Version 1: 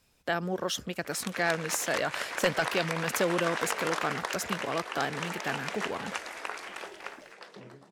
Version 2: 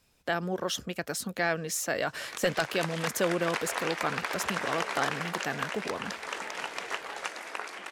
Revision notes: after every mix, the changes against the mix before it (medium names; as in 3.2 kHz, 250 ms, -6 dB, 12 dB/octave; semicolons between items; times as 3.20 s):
background: entry +1.10 s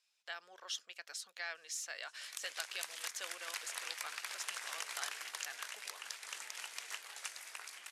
speech: add band-pass 560–4700 Hz; master: add differentiator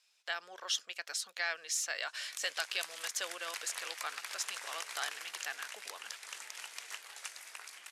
speech +7.5 dB